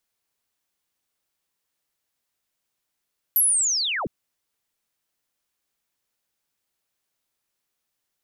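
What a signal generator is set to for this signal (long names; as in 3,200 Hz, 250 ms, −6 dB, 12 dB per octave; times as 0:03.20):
glide linear 12,000 Hz → 93 Hz −15 dBFS → −25 dBFS 0.71 s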